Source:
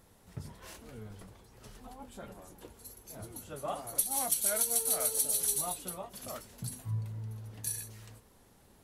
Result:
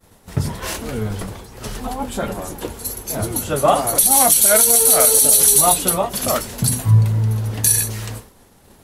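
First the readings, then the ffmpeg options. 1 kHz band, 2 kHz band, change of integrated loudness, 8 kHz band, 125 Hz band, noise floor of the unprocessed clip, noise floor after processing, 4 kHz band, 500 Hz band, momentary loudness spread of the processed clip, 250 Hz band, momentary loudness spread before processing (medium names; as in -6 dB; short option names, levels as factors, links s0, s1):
+21.5 dB, +20.5 dB, +18.0 dB, +18.5 dB, +22.5 dB, -62 dBFS, -50 dBFS, +19.5 dB, +21.5 dB, 19 LU, +22.0 dB, 22 LU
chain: -af "bandreject=f=60:t=h:w=6,bandreject=f=120:t=h:w=6,bandreject=f=180:t=h:w=6,agate=range=0.0224:threshold=0.00224:ratio=3:detection=peak,alimiter=level_in=15.8:limit=0.891:release=50:level=0:latency=1,volume=0.891"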